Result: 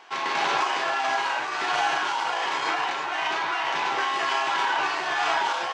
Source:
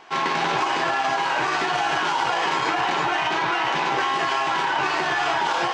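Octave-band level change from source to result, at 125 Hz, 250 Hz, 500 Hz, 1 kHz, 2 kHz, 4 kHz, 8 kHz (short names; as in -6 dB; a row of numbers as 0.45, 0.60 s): under -10 dB, -9.0 dB, -4.5 dB, -3.0 dB, -2.5 dB, -2.0 dB, -2.0 dB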